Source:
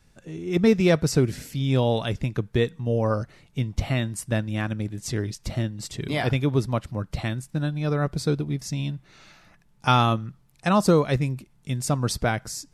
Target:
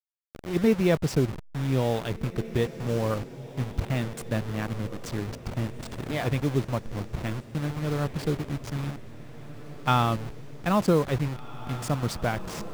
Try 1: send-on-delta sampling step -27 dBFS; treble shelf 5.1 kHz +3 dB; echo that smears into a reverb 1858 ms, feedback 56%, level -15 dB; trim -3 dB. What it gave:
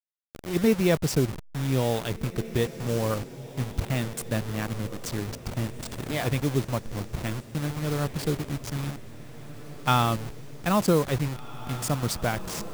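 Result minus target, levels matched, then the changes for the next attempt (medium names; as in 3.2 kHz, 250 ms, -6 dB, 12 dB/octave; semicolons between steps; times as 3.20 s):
8 kHz band +6.0 dB
change: treble shelf 5.1 kHz -6.5 dB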